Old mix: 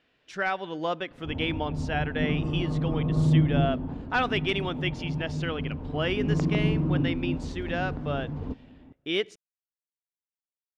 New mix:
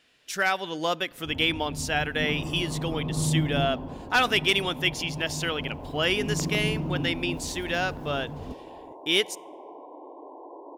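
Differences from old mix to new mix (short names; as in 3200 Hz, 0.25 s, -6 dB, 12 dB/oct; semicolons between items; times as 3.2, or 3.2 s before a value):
first sound -5.0 dB; second sound: unmuted; master: remove tape spacing loss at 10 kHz 26 dB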